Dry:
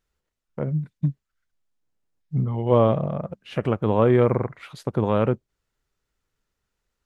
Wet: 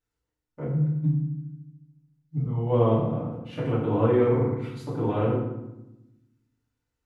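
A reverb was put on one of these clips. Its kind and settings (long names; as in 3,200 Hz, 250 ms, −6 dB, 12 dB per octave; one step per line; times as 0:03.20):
feedback delay network reverb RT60 0.91 s, low-frequency decay 1.6×, high-frequency decay 0.7×, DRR −9.5 dB
level −14.5 dB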